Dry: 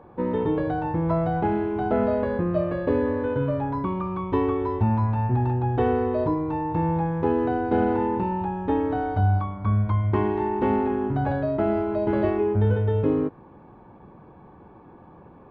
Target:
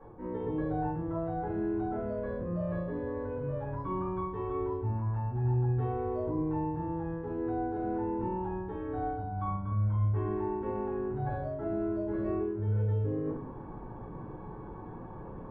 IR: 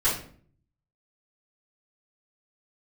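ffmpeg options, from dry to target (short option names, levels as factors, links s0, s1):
-filter_complex "[0:a]highshelf=f=2000:g=-10.5,areverse,acompressor=threshold=0.0178:ratio=16,areverse[s0];[1:a]atrim=start_sample=2205,afade=t=out:st=0.26:d=0.01,atrim=end_sample=11907[s1];[s0][s1]afir=irnorm=-1:irlink=0,volume=0.398"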